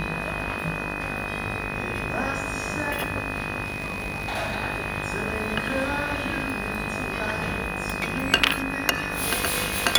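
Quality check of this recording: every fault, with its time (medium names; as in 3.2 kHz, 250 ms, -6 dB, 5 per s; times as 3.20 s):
buzz 50 Hz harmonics 40 -33 dBFS
crackle 13 per s
whine 2.5 kHz -32 dBFS
3.64–4.57 s: clipped -23.5 dBFS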